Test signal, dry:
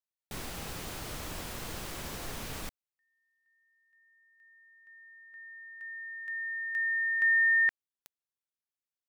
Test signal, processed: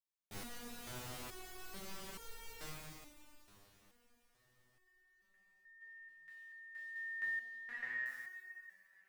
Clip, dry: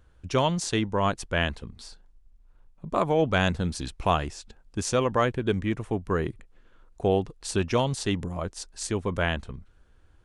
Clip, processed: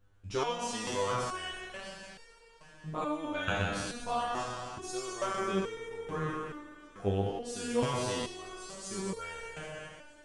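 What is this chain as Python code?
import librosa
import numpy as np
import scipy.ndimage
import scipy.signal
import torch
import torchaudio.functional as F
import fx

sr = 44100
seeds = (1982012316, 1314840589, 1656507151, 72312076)

y = fx.spec_trails(x, sr, decay_s=2.37)
y = fx.echo_swing(y, sr, ms=710, ratio=3, feedback_pct=54, wet_db=-21.5)
y = fx.resonator_held(y, sr, hz=2.3, low_hz=100.0, high_hz=460.0)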